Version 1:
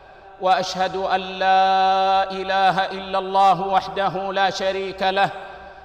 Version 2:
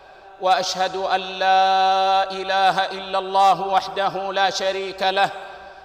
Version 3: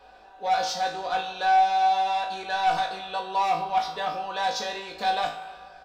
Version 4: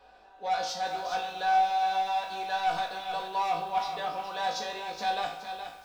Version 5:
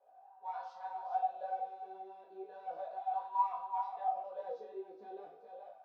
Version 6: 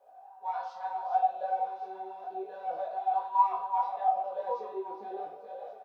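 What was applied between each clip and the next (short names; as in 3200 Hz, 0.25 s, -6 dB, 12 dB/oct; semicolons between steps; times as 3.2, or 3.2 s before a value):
tone controls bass -7 dB, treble +6 dB
comb 4.1 ms, depth 70%; soft clip -10 dBFS, distortion -15 dB; resonator 54 Hz, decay 0.42 s, harmonics all, mix 90%
on a send at -19 dB: reverb, pre-delay 48 ms; on the sum: lo-fi delay 0.42 s, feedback 35%, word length 8-bit, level -8 dB; gain -5 dB
wah 0.35 Hz 370–1000 Hz, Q 10; detuned doubles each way 24 cents; gain +5.5 dB
echo 1.122 s -13.5 dB; gain +7.5 dB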